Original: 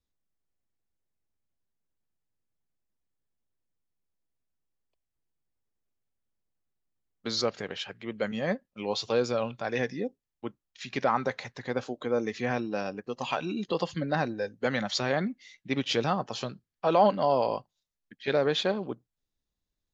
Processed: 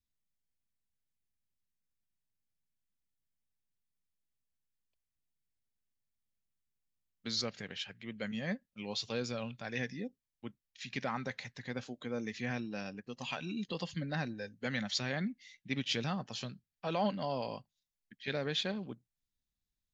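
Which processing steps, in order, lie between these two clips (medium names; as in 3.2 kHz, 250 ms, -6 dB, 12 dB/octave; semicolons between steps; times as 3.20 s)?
high-order bell 650 Hz -8.5 dB 2.4 oct; trim -4 dB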